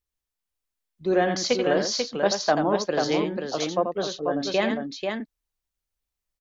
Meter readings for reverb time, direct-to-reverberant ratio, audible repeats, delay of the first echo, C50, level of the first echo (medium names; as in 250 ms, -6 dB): no reverb, no reverb, 2, 85 ms, no reverb, -7.0 dB